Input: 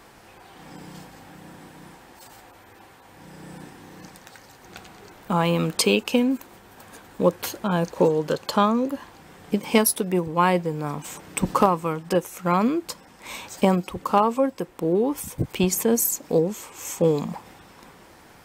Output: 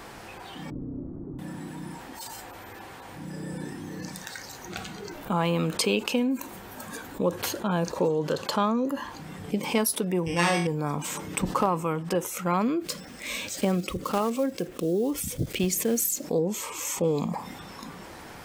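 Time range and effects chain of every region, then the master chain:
0.70–1.39 s: low-pass 1.1 kHz 24 dB/octave + frequency shift -440 Hz
10.26–10.67 s: sorted samples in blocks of 16 samples + low-pass 7.8 kHz + flutter echo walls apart 4 m, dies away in 0.41 s
12.81–16.25 s: block-companded coder 5-bit + peaking EQ 940 Hz -10 dB 0.51 oct
whole clip: spectral noise reduction 9 dB; treble shelf 9.6 kHz -3.5 dB; level flattener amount 50%; trim -7.5 dB

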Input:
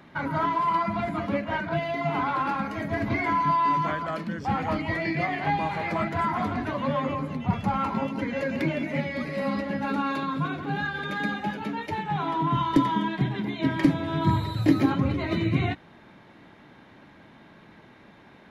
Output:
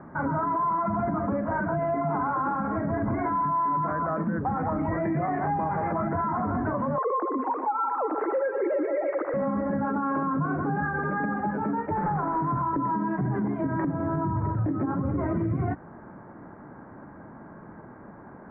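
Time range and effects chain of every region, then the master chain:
6.98–9.34 s: formants replaced by sine waves + high-pass 250 Hz 24 dB/octave + bit-crushed delay 121 ms, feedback 80%, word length 9-bit, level -13 dB
11.97–12.62 s: one-bit delta coder 16 kbps, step -25.5 dBFS + low-pass 2.2 kHz 24 dB/octave
whole clip: steep low-pass 1.5 kHz 36 dB/octave; compression 10:1, threshold -25 dBFS; peak limiter -26.5 dBFS; trim +7 dB

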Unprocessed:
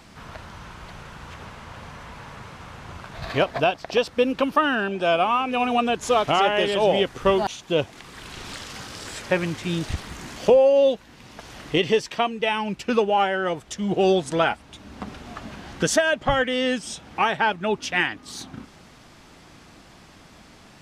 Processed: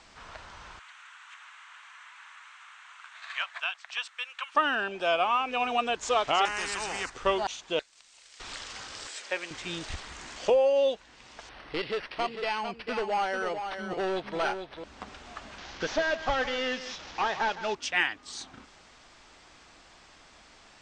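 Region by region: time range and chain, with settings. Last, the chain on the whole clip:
0.79–4.55 s: high-pass 1.2 kHz 24 dB/octave + peaking EQ 4.9 kHz -10 dB 0.54 oct
6.45–7.10 s: static phaser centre 1.4 kHz, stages 4 + spectrum-flattening compressor 2:1
7.79–8.40 s: differentiator + ring modulator 980 Hz + tape noise reduction on one side only encoder only
9.07–9.51 s: high-pass 430 Hz + peaking EQ 1 kHz -6 dB 1.9 oct
11.49–14.84 s: hard clipper -18.5 dBFS + delay 447 ms -7.5 dB + decimation joined by straight lines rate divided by 6×
15.58–17.75 s: one-bit delta coder 32 kbps, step -33 dBFS + delay 160 ms -13 dB
whole clip: steep low-pass 8.7 kHz 72 dB/octave; peaking EQ 150 Hz -14 dB 2.5 oct; trim -3 dB

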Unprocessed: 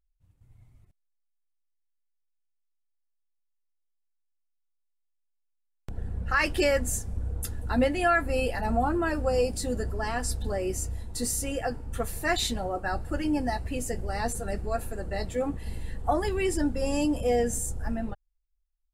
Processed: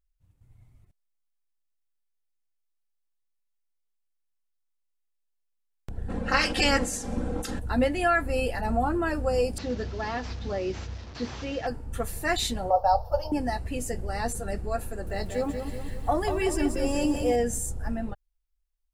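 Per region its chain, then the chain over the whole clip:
6.08–7.58 s: spectral peaks clipped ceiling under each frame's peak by 21 dB + low-pass 6.7 kHz + comb 3.8 ms, depth 64%
9.58–11.67 s: one-bit delta coder 32 kbps, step -40.5 dBFS + high-pass 65 Hz
12.70–13.32 s: FFT filter 100 Hz 0 dB, 170 Hz -11 dB, 320 Hz -25 dB, 520 Hz +10 dB, 920 Hz +13 dB, 2 kHz -23 dB, 3 kHz -7 dB, 5.5 kHz +10 dB, 8 kHz -27 dB, 14 kHz +10 dB + expander -33 dBFS
14.88–17.36 s: hum notches 50/100/150 Hz + bit-crushed delay 188 ms, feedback 55%, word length 9-bit, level -6.5 dB
whole clip: none

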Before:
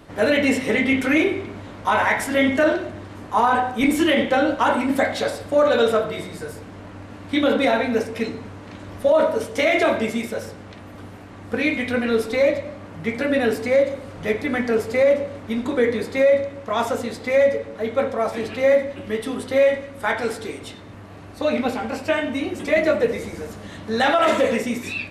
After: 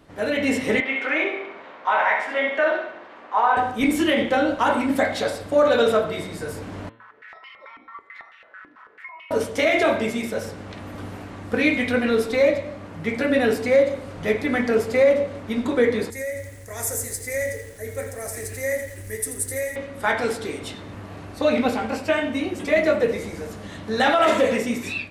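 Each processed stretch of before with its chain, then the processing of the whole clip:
0.80–3.57 s: band-pass 620–2600 Hz + flutter echo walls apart 11.4 m, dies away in 0.52 s
6.89–9.31 s: ring modulator 1.6 kHz + compression 4:1, threshold -37 dBFS + step-sequenced band-pass 9.1 Hz 300–2800 Hz
16.10–19.76 s: FFT filter 100 Hz 0 dB, 200 Hz -20 dB, 420 Hz -12 dB, 820 Hz -20 dB, 1.2 kHz -23 dB, 1.9 kHz -5 dB, 3.1 kHz -25 dB, 6.4 kHz +5 dB, 9.5 kHz +13 dB + bit-crushed delay 84 ms, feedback 55%, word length 8-bit, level -9 dB
whole clip: de-hum 113.6 Hz, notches 37; level rider; trim -6.5 dB

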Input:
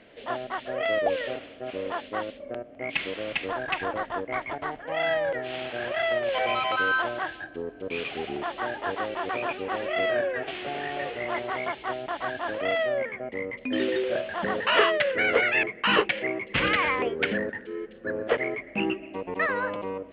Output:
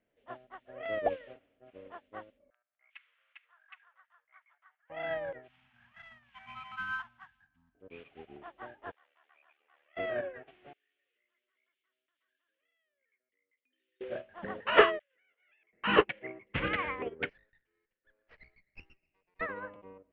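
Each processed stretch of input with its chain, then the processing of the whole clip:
2.50–4.90 s: ladder high-pass 1.1 kHz, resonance 45% + treble shelf 2 kHz +5 dB
5.48–7.75 s: CVSD coder 64 kbps + Chebyshev band-stop 230–890 Hz, order 3
8.91–9.97 s: high-pass 1.4 kHz + ring modulator 37 Hz
10.73–14.01 s: compression 4:1, threshold -31 dBFS + differentiator + static phaser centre 330 Hz, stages 4
14.99–15.73 s: distance through air 370 m + compressor with a negative ratio -31 dBFS + band-pass filter 3.5 kHz, Q 2.8
17.29–19.41 s: band-pass filter 2.5 kHz, Q 2.1 + sliding maximum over 5 samples
whole clip: low-pass 2.7 kHz 12 dB/octave; bass shelf 120 Hz +8 dB; upward expansion 2.5:1, over -37 dBFS; trim +2 dB

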